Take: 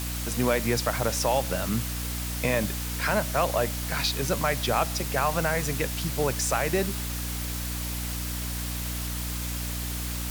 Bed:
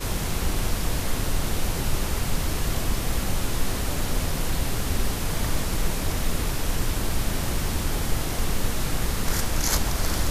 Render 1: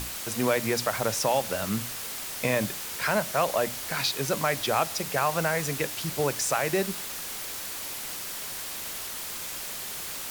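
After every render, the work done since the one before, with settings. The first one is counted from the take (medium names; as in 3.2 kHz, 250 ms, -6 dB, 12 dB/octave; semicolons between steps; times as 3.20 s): hum notches 60/120/180/240/300 Hz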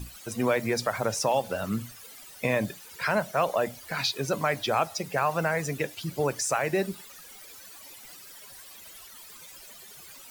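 noise reduction 16 dB, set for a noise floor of -36 dBFS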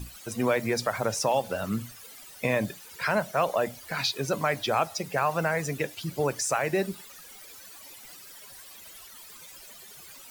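no audible change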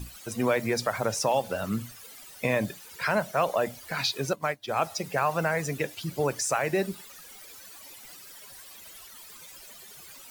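4.33–4.82 s: upward expansion 2.5:1, over -40 dBFS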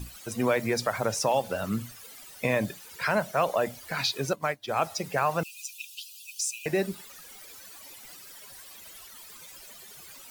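5.43–6.66 s: brick-wall FIR high-pass 2.4 kHz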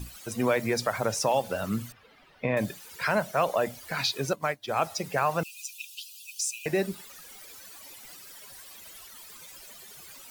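1.92–2.57 s: distance through air 360 m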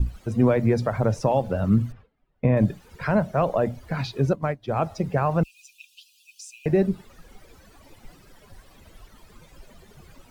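gate with hold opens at -42 dBFS; tilt EQ -4.5 dB/octave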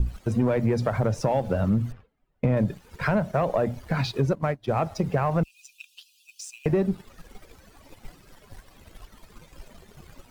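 waveshaping leveller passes 1; compression 3:1, threshold -21 dBFS, peak gain reduction 7 dB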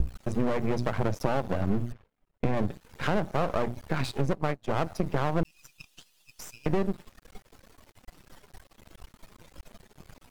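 half-wave rectifier; vibrato 1.5 Hz 13 cents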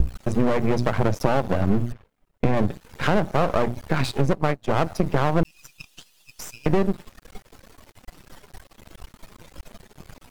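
trim +6.5 dB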